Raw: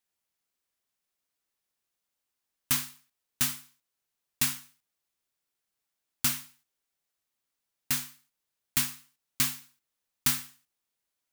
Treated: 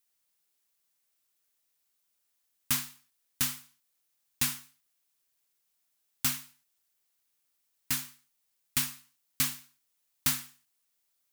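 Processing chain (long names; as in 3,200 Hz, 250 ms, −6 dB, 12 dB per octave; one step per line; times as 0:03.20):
pitch vibrato 1.3 Hz 23 cents
background noise blue −76 dBFS
level −1.5 dB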